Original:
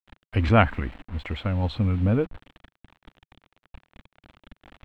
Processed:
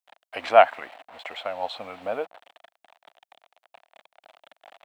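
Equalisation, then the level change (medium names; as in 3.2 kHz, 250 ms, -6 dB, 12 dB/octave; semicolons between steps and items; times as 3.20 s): resonant high-pass 680 Hz, resonance Q 4.6; treble shelf 3.2 kHz +9.5 dB; -3.5 dB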